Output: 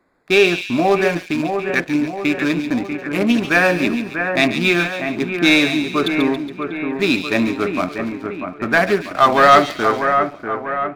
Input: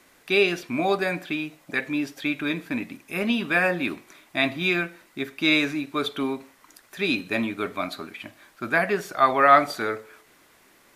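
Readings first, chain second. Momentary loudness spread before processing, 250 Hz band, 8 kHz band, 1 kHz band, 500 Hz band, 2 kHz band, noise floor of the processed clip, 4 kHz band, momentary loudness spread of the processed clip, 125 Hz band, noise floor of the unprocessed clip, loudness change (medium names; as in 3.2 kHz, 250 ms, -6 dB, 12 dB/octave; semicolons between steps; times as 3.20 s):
13 LU, +9.5 dB, +10.0 dB, +7.0 dB, +8.5 dB, +7.0 dB, -37 dBFS, +7.0 dB, 10 LU, +9.5 dB, -58 dBFS, +7.0 dB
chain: local Wiener filter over 15 samples; waveshaping leveller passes 2; two-band feedback delay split 2.3 kHz, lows 642 ms, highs 139 ms, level -6.5 dB; trim +1 dB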